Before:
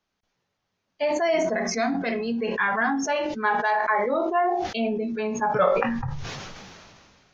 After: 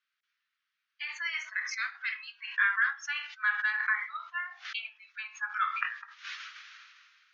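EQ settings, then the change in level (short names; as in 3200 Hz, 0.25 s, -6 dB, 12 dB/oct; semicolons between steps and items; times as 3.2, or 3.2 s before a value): steep high-pass 1300 Hz 48 dB/oct; LPF 3400 Hz 12 dB/oct; 0.0 dB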